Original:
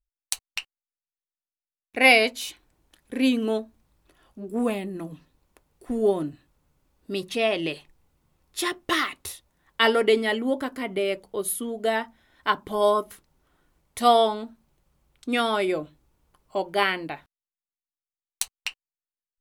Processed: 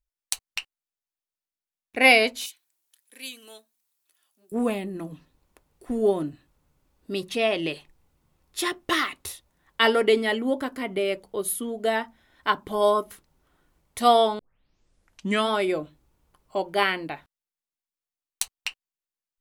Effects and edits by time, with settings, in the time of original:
2.46–4.52 differentiator
14.39 tape start 1.10 s

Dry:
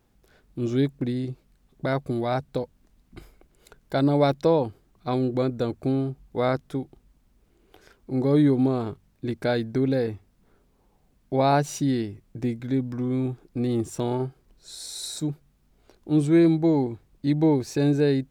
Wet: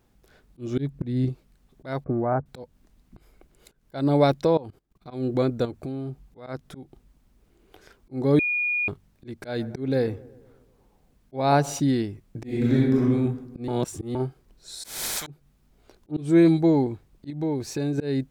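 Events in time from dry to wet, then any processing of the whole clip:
0.78–1.29 tone controls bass +8 dB, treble -3 dB
2.04–2.46 inverse Chebyshev low-pass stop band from 3900 Hz, stop band 50 dB
4.45–5.11 level quantiser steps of 20 dB
5.65–6.47 compressor, threshold -31 dBFS
8.39–8.88 bleep 2440 Hz -23.5 dBFS
9.41–11.8 dark delay 0.122 s, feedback 56%, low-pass 1500 Hz, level -21 dB
12.44–13.03 reverb throw, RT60 1.1 s, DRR -6.5 dB
13.68–14.15 reverse
14.84–15.27 spectral compressor 10:1
16.11–16.62 dispersion highs, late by 47 ms, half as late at 2800 Hz
17.3–17.98 compressor 2:1, threshold -30 dBFS
whole clip: auto swell 0.211 s; gain +1.5 dB

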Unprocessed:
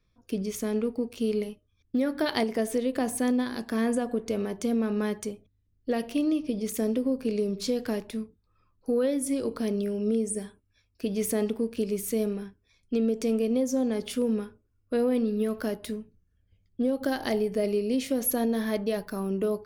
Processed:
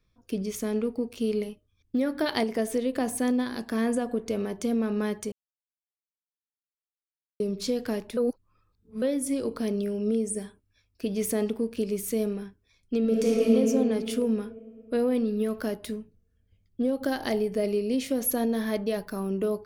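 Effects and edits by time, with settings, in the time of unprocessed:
5.32–7.4 mute
8.17–9.02 reverse
13–13.52 reverb throw, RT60 2.7 s, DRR -4.5 dB

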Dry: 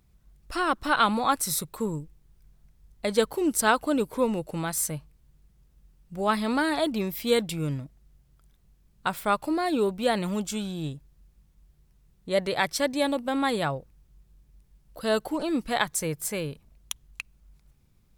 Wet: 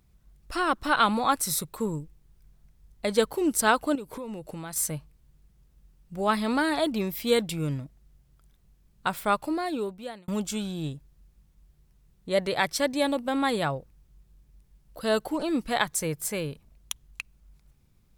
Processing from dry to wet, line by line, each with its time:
3.95–4.76 compressor 8:1, threshold -33 dBFS
9.34–10.28 fade out

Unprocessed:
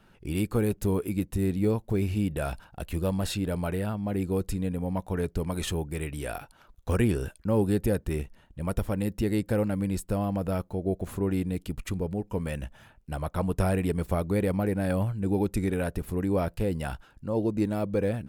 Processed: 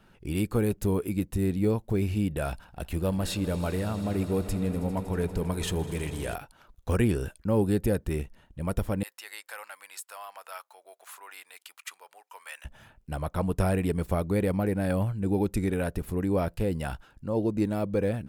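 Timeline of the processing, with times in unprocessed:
2.52–6.35 swelling echo 80 ms, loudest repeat 5, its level -18 dB
9.03–12.65 HPF 960 Hz 24 dB/oct

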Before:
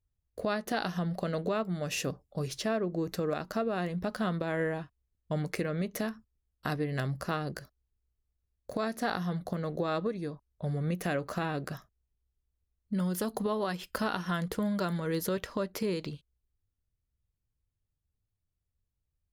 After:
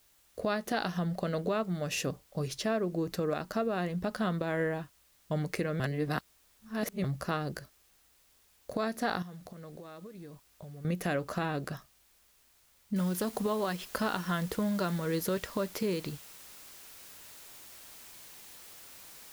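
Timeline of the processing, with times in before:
5.8–7.04 reverse
9.22–10.85 compressor 12:1, threshold -43 dBFS
12.96 noise floor step -66 dB -51 dB

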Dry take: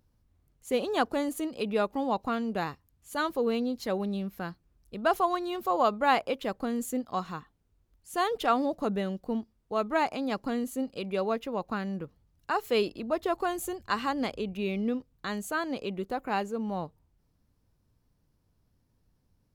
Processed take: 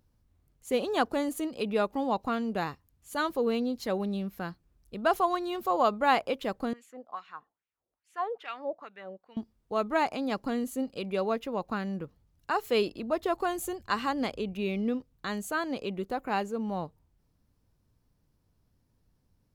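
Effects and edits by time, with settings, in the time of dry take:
6.73–9.37 wah 2.4 Hz 540–2600 Hz, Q 2.8

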